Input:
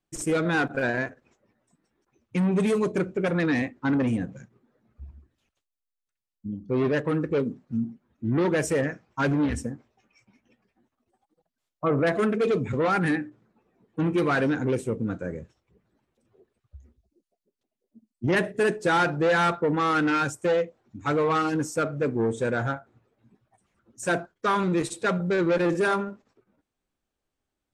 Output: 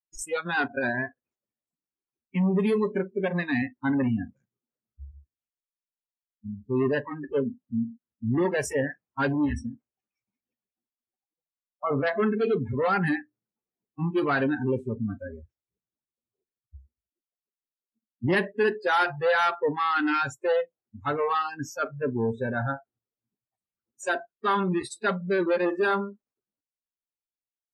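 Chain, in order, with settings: spectral noise reduction 29 dB

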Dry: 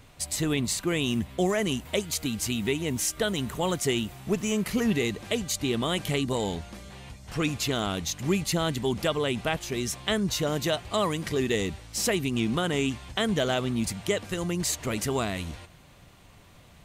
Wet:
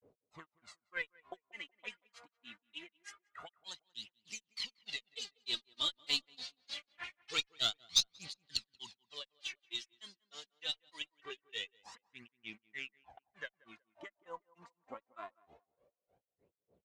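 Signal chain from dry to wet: Doppler pass-by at 6.92, 7 m/s, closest 5.4 m; LPF 8400 Hz; in parallel at -6.5 dB: overloaded stage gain 30 dB; on the sum: auto-wah 450–4400 Hz, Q 4, up, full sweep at -32.5 dBFS; phaser 0.24 Hz, delay 4.4 ms, feedback 65%; grains 0.165 s, grains 3.3/s, pitch spread up and down by 0 st; added harmonics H 8 -30 dB, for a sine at -24.5 dBFS; on a send: tape echo 0.184 s, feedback 31%, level -22 dB, low-pass 1400 Hz; on the sum: gain +12 dB

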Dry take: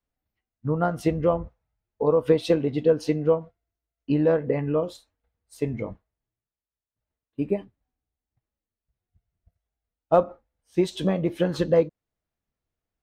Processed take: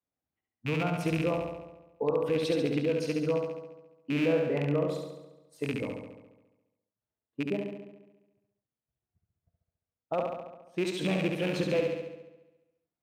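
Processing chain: rattling part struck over -26 dBFS, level -18 dBFS; HPF 120 Hz 12 dB/oct; limiter -16 dBFS, peak gain reduction 10 dB; flutter echo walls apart 11.9 m, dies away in 1.1 s; mismatched tape noise reduction decoder only; gain -4.5 dB

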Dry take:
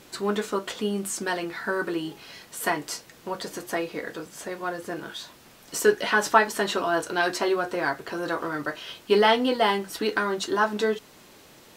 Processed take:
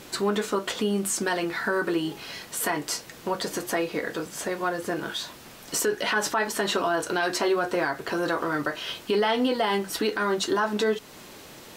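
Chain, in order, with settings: in parallel at 0 dB: compressor, threshold -33 dBFS, peak gain reduction 19 dB; on the sum: limiter -15.5 dBFS, peak gain reduction 11.5 dB

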